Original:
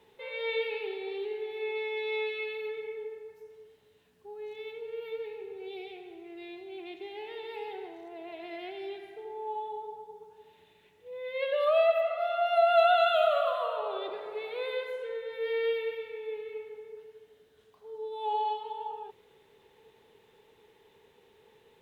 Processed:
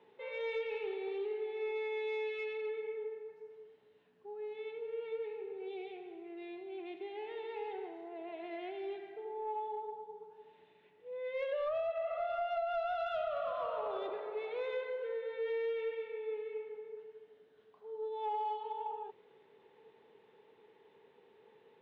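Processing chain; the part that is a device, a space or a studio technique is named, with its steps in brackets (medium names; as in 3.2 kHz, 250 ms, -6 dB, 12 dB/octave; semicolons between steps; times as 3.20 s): AM radio (band-pass 180–3900 Hz; compression 8:1, threshold -30 dBFS, peak gain reduction 12.5 dB; saturation -26 dBFS, distortion -23 dB); treble shelf 3.1 kHz -10 dB; trim -1 dB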